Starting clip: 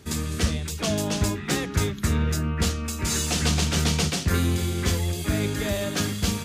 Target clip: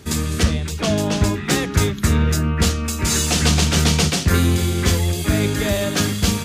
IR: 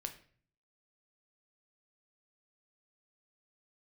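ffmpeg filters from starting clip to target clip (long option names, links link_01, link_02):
-filter_complex "[0:a]asettb=1/sr,asplit=3[link_01][link_02][link_03];[link_01]atrim=end=0.434[link_04];[link_02]atrim=start=0.43:end=1.34,asetpts=PTS-STARTPTS,afade=type=in:duration=0.004:curve=qsin,afade=type=out:start_time=0.906:duration=0.004:curve=qsin,highshelf=frequency=5300:gain=-7.5[link_05];[link_03]atrim=start=1.336[link_06];[link_04][link_05]acrossfade=duration=0.004:curve1=hsin:curve2=qsin[link_07];[link_07][link_06]acrossfade=duration=0.004:curve1=qsin:curve2=hsin,volume=6.5dB"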